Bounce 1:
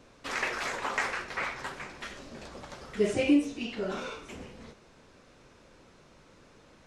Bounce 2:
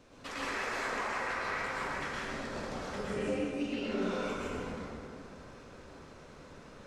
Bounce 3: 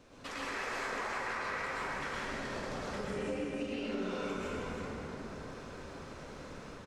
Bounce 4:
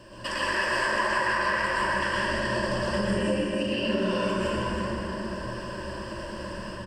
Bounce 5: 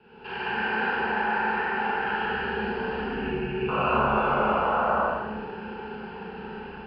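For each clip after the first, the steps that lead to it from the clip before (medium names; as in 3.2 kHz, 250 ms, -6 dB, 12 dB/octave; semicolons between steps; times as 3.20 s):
compression 12:1, threshold -36 dBFS, peak gain reduction 17.5 dB; plate-style reverb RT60 2.7 s, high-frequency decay 0.4×, pre-delay 95 ms, DRR -8 dB; trim -3.5 dB
level rider gain up to 4.5 dB; delay 316 ms -7.5 dB; compression 2:1, threshold -40 dBFS, peak gain reduction 8.5 dB
rippled EQ curve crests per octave 1.3, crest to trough 16 dB; trim +8.5 dB
mistuned SSB -150 Hz 280–3500 Hz; painted sound noise, 3.68–5.07 s, 460–1500 Hz -24 dBFS; Schroeder reverb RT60 0.85 s, combs from 29 ms, DRR -5.5 dB; trim -7 dB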